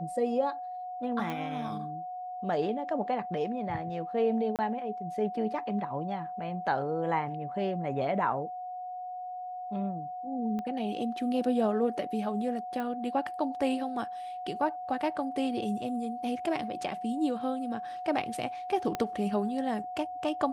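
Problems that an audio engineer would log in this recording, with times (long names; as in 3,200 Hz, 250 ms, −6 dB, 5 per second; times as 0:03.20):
whistle 730 Hz −36 dBFS
0:01.30: click −22 dBFS
0:04.56–0:04.59: drop-out 28 ms
0:10.59: click −25 dBFS
0:12.80: click −24 dBFS
0:18.95: click −17 dBFS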